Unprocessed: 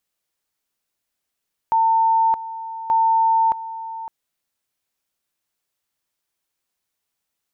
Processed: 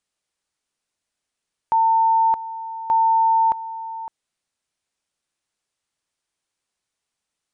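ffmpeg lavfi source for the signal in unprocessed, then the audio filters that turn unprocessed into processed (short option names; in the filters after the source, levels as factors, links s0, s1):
-f lavfi -i "aevalsrc='pow(10,(-13.5-14.5*gte(mod(t,1.18),0.62))/20)*sin(2*PI*900*t)':d=2.36:s=44100"
-af "aresample=22050,aresample=44100"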